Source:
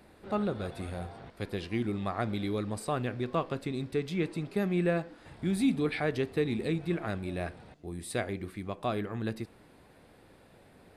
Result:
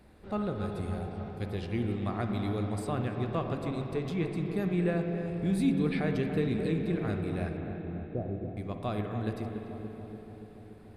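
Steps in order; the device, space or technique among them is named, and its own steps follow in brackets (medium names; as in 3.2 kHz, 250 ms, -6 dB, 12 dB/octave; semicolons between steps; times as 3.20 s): bass shelf 140 Hz +10.5 dB; 7.57–8.57 s: inverse Chebyshev low-pass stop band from 2.4 kHz, stop band 60 dB; dub delay into a spring reverb (filtered feedback delay 287 ms, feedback 72%, low-pass 1.4 kHz, level -8 dB; spring tank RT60 3.6 s, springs 47/51 ms, chirp 50 ms, DRR 5 dB); trim -4 dB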